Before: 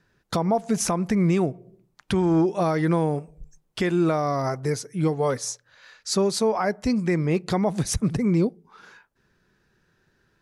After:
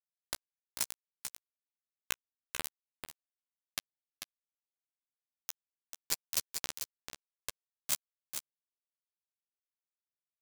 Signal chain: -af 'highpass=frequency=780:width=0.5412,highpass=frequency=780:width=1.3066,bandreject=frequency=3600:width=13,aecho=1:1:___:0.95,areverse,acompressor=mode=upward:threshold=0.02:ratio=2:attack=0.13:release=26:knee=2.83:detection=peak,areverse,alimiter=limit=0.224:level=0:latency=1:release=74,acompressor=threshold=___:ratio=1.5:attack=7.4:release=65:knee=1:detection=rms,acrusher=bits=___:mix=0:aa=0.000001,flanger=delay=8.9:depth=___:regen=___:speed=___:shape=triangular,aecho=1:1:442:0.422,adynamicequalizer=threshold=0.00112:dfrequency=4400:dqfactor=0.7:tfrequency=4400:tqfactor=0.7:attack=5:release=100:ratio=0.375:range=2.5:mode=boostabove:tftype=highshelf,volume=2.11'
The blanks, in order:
1.9, 0.00794, 3, 8.5, -3, 1.6